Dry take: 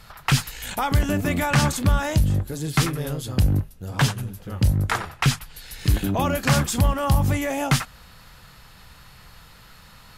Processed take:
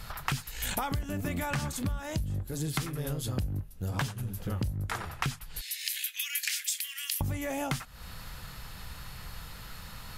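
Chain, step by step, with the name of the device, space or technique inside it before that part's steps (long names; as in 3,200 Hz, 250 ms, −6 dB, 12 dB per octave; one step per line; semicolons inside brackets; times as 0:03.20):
0:05.61–0:07.21: Butterworth high-pass 1,900 Hz 48 dB per octave
ASMR close-microphone chain (low-shelf EQ 110 Hz +5.5 dB; downward compressor 10 to 1, threshold −31 dBFS, peak gain reduction 21 dB; high-shelf EQ 10,000 Hz +6 dB)
level +1.5 dB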